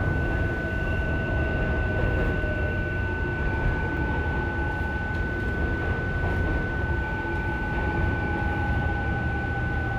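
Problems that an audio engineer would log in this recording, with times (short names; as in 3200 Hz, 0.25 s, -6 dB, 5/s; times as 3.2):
tone 1500 Hz -31 dBFS
3.97 gap 2.5 ms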